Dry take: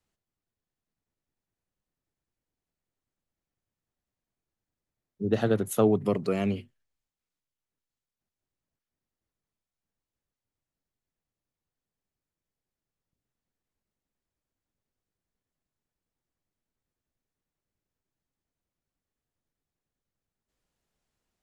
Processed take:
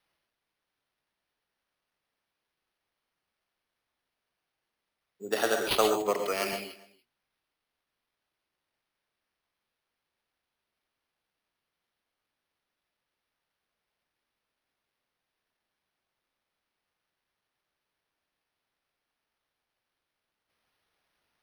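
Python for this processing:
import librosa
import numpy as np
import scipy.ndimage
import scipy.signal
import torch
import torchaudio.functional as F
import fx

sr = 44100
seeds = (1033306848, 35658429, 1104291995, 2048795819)

y = scipy.signal.sosfilt(scipy.signal.butter(2, 820.0, 'highpass', fs=sr, output='sos'), x)
y = y + 10.0 ** (-22.5 / 20.0) * np.pad(y, (int(285 * sr / 1000.0), 0))[:len(y)]
y = fx.rev_gated(y, sr, seeds[0], gate_ms=160, shape='rising', drr_db=3.5)
y = np.repeat(y[::6], 6)[:len(y)]
y = fx.band_widen(y, sr, depth_pct=70, at=(6.02, 6.53))
y = F.gain(torch.from_numpy(y), 6.5).numpy()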